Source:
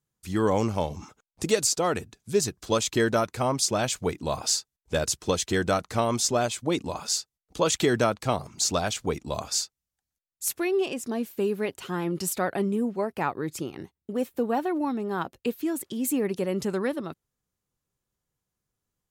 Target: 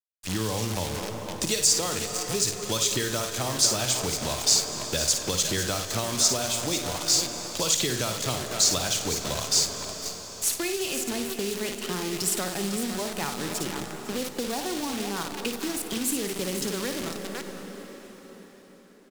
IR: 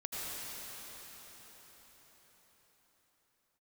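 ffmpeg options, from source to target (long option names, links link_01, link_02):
-filter_complex "[0:a]highpass=50,asplit=2[link_01][link_02];[link_02]acompressor=threshold=-38dB:ratio=6,volume=-0.5dB[link_03];[link_01][link_03]amix=inputs=2:normalize=0,highshelf=frequency=11000:gain=-7,aecho=1:1:55|503:0.422|0.266,acrusher=bits=6:dc=4:mix=0:aa=0.000001,equalizer=frequency=5500:width=0.36:gain=6,asplit=2[link_04][link_05];[1:a]atrim=start_sample=2205,adelay=93[link_06];[link_05][link_06]afir=irnorm=-1:irlink=0,volume=-13dB[link_07];[link_04][link_07]amix=inputs=2:normalize=0,acrossover=split=130|3000[link_08][link_09][link_10];[link_09]acompressor=threshold=-28dB:ratio=4[link_11];[link_08][link_11][link_10]amix=inputs=3:normalize=0,volume=-1.5dB"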